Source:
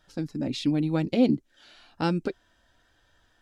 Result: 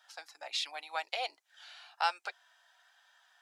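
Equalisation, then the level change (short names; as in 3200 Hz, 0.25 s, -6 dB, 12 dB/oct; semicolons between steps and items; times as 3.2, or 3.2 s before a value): elliptic high-pass 730 Hz, stop band 70 dB; +2.0 dB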